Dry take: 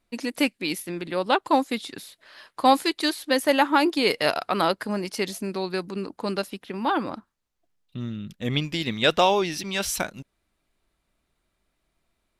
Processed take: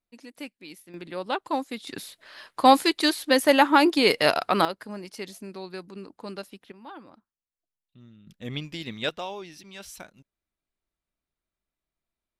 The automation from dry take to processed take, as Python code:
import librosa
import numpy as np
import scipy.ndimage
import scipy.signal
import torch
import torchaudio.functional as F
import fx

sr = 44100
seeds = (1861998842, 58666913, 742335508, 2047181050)

y = fx.gain(x, sr, db=fx.steps((0.0, -16.0), (0.94, -7.0), (1.87, 2.0), (4.65, -9.5), (6.72, -19.0), (8.27, -8.0), (9.09, -15.5)))